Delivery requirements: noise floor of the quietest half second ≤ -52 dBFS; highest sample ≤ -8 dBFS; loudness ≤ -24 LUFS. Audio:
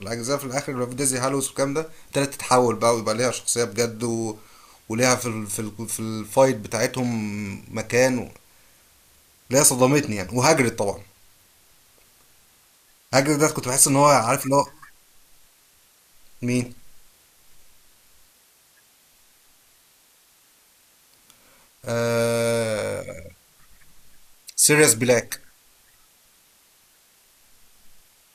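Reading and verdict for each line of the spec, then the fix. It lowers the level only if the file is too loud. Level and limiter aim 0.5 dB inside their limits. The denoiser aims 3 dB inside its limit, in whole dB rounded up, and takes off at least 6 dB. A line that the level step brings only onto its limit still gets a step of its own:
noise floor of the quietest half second -58 dBFS: pass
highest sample -2.5 dBFS: fail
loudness -21.5 LUFS: fail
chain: trim -3 dB; peak limiter -8.5 dBFS

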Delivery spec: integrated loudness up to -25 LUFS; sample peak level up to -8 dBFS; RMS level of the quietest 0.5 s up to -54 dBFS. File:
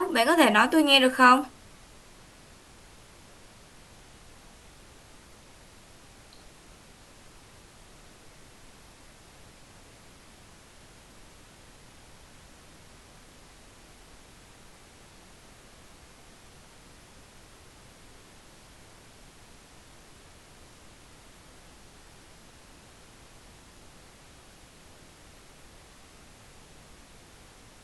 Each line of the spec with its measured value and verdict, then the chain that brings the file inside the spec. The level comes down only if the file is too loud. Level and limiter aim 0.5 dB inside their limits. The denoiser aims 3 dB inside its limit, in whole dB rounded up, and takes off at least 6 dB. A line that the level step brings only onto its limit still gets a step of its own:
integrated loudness -20.0 LUFS: fail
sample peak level -4.0 dBFS: fail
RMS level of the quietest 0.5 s -53 dBFS: fail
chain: trim -5.5 dB

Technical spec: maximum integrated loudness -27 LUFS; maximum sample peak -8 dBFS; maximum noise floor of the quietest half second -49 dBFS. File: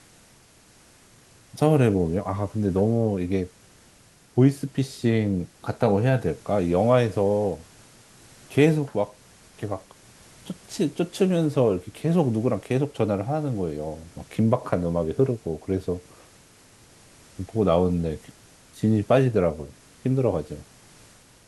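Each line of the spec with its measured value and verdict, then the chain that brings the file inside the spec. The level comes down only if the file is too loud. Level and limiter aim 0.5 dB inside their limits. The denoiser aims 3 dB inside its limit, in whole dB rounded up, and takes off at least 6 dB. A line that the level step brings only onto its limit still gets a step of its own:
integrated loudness -24.0 LUFS: fail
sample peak -5.5 dBFS: fail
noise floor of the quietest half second -55 dBFS: pass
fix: trim -3.5 dB

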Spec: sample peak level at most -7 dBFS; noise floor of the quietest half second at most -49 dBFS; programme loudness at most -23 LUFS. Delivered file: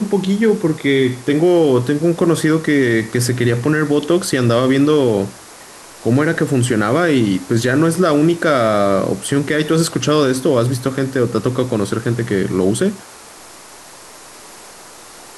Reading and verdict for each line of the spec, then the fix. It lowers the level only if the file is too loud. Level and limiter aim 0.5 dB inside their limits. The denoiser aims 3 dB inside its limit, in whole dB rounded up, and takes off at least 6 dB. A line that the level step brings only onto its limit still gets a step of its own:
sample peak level -4.5 dBFS: fail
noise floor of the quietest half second -39 dBFS: fail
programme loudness -16.0 LUFS: fail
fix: noise reduction 6 dB, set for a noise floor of -39 dBFS; trim -7.5 dB

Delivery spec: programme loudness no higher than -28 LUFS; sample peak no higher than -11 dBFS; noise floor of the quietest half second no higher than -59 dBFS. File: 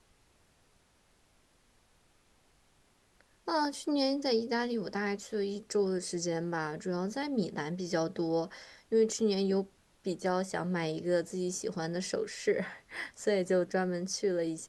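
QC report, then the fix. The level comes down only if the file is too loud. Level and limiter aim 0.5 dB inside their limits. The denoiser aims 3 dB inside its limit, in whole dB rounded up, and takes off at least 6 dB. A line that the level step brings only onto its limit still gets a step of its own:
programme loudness -33.0 LUFS: pass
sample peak -17.5 dBFS: pass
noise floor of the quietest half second -68 dBFS: pass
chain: none needed

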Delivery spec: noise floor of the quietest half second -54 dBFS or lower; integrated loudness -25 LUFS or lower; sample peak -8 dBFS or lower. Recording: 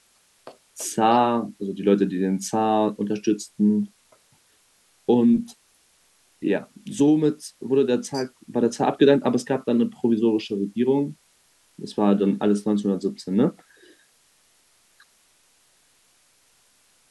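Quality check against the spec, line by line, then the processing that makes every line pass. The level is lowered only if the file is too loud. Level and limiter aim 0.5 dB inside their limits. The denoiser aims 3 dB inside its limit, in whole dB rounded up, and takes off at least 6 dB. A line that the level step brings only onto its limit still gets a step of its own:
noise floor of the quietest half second -61 dBFS: pass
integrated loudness -22.5 LUFS: fail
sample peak -5.0 dBFS: fail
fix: trim -3 dB; peak limiter -8.5 dBFS

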